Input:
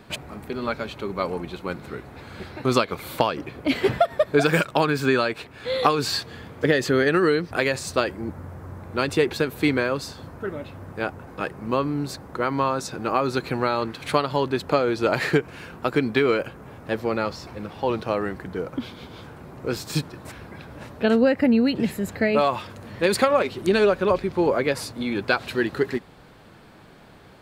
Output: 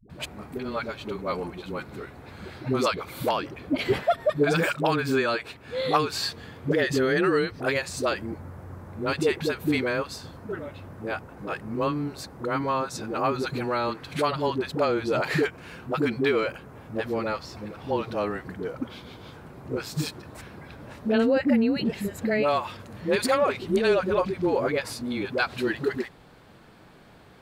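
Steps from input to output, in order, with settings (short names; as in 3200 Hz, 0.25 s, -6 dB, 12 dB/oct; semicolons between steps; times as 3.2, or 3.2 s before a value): dispersion highs, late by 98 ms, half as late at 350 Hz; gain -3 dB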